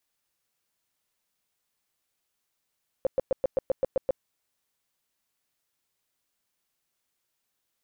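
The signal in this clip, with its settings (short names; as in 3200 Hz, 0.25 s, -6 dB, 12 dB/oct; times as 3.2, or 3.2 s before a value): tone bursts 530 Hz, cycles 9, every 0.13 s, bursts 9, -19.5 dBFS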